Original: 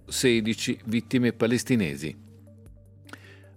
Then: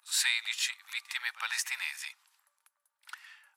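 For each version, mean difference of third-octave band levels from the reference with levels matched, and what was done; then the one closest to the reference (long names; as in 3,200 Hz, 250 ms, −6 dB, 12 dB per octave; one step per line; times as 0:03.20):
14.5 dB: Butterworth high-pass 910 Hz 48 dB per octave
on a send: backwards echo 58 ms −17 dB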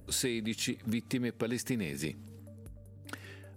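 5.0 dB: high-shelf EQ 8,800 Hz +6.5 dB
downward compressor 6 to 1, threshold −30 dBFS, peak gain reduction 13.5 dB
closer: second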